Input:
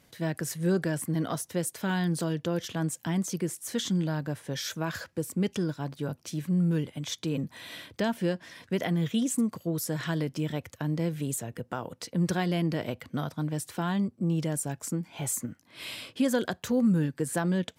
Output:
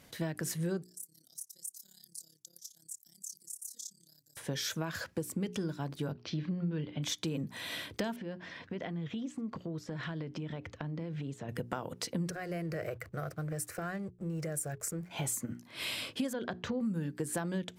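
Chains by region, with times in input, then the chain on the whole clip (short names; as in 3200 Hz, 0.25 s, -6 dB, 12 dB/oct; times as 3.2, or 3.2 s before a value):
0.83–4.37 inverse Chebyshev high-pass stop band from 2900 Hz + compressor 2.5:1, threshold -40 dBFS + AM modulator 34 Hz, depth 75%
6.12–7.03 steep low-pass 4700 Hz + doubler 33 ms -14 dB
8.16–11.49 compressor, threshold -37 dBFS + air absorption 180 m
12.3–15.11 compressor 4:1, threshold -29 dBFS + fixed phaser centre 930 Hz, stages 6 + backlash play -55.5 dBFS
16.33–16.81 compressor 1.5:1, threshold -32 dBFS + air absorption 190 m
whole clip: notches 60/120/180/240/300/360/420 Hz; compressor, threshold -35 dBFS; gain +3 dB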